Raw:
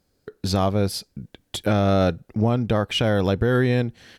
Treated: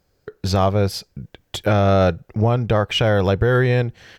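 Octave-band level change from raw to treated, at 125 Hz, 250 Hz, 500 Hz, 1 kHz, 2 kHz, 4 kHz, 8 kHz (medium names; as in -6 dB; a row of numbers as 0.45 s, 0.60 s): +4.0 dB, -0.5 dB, +4.0 dB, +4.5 dB, +4.5 dB, +2.5 dB, 0.0 dB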